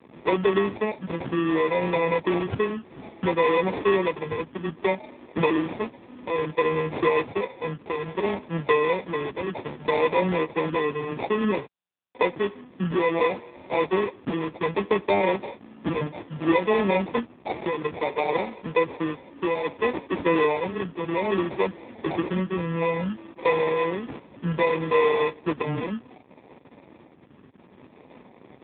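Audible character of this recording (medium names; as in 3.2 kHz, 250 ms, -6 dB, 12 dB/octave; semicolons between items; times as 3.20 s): a quantiser's noise floor 8-bit, dither none; phasing stages 12, 0.61 Hz, lowest notch 660–2500 Hz; aliases and images of a low sample rate 1.5 kHz, jitter 0%; AMR-NB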